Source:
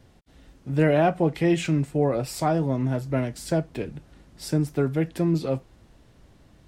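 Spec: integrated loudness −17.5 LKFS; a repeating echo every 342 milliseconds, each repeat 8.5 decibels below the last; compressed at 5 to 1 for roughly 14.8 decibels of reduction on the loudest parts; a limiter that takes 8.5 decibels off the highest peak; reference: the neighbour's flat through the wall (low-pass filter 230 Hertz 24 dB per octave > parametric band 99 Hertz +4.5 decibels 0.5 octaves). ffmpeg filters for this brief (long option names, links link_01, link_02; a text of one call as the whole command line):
ffmpeg -i in.wav -af "acompressor=threshold=-33dB:ratio=5,alimiter=level_in=3.5dB:limit=-24dB:level=0:latency=1,volume=-3.5dB,lowpass=frequency=230:width=0.5412,lowpass=frequency=230:width=1.3066,equalizer=frequency=99:width_type=o:width=0.5:gain=4.5,aecho=1:1:342|684|1026|1368:0.376|0.143|0.0543|0.0206,volume=24dB" out.wav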